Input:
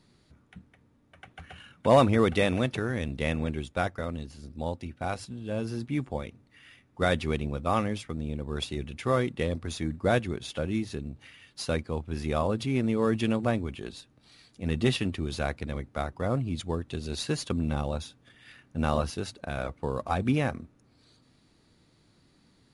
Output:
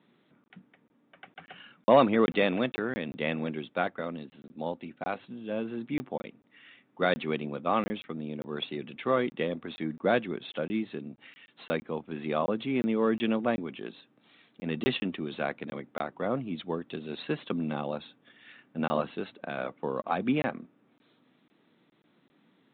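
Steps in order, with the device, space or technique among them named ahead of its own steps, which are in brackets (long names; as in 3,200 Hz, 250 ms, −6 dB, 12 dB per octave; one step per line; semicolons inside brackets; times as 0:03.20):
call with lost packets (high-pass filter 180 Hz 24 dB per octave; downsampling to 8,000 Hz; dropped packets of 20 ms random)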